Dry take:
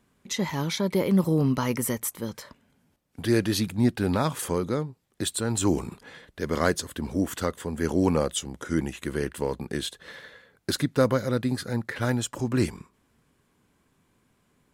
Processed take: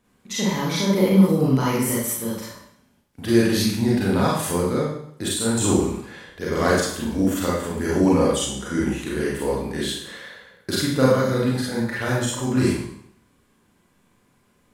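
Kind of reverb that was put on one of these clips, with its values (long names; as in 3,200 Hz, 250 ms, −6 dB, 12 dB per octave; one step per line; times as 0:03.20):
four-comb reverb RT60 0.66 s, combs from 31 ms, DRR −6 dB
level −1.5 dB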